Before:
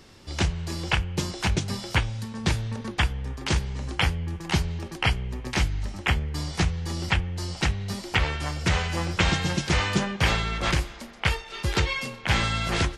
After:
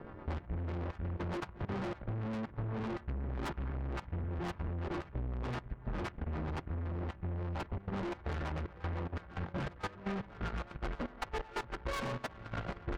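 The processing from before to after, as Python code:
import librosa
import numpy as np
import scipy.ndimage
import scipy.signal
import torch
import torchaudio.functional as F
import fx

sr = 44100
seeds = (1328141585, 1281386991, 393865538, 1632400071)

p1 = fx.freq_snap(x, sr, grid_st=2)
p2 = scipy.signal.sosfilt(scipy.signal.butter(4, 1300.0, 'lowpass', fs=sr, output='sos'), p1)
p3 = fx.over_compress(p2, sr, threshold_db=-36.0, ratio=-1.0)
p4 = fx.rotary(p3, sr, hz=8.0)
p5 = fx.hum_notches(p4, sr, base_hz=50, count=5)
p6 = p5 + fx.echo_feedback(p5, sr, ms=568, feedback_pct=60, wet_db=-21.0, dry=0)
p7 = fx.rev_spring(p6, sr, rt60_s=3.2, pass_ms=(48,), chirp_ms=70, drr_db=11.5)
p8 = fx.tube_stage(p7, sr, drive_db=46.0, bias=0.55)
p9 = fx.level_steps(p8, sr, step_db=12)
p10 = fx.transient(p9, sr, attack_db=4, sustain_db=-4)
y = F.gain(torch.from_numpy(p10), 11.0).numpy()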